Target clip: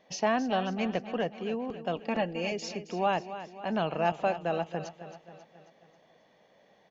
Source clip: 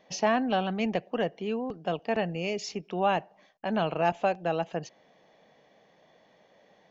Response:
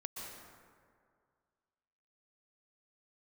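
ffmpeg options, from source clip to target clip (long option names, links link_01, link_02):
-filter_complex "[0:a]asettb=1/sr,asplit=3[link_01][link_02][link_03];[link_01]atrim=end=1.964[link_04];[link_02]atrim=start=1.96:end=2.52,asetpts=PTS-STARTPTS,afade=type=in:duration=0.004:curve=qsin,afade=type=out:start_time=0.556:duration=0.004:curve=qsin,aecho=1:1:3.6:0.78,atrim=end_sample=24696[link_05];[link_03]atrim=start=2.516[link_06];[link_04][link_05]acrossfade=duration=0.004:curve1=hsin:curve2=qsin[link_07];[link_07][link_06]acrossfade=duration=0.004:curve1=qsin:curve2=hsin,asplit=2[link_08][link_09];[link_09]aecho=0:1:270|540|810|1080|1350:0.237|0.126|0.0666|0.0353|0.0187[link_10];[link_08][link_10]amix=inputs=2:normalize=0,volume=-2dB"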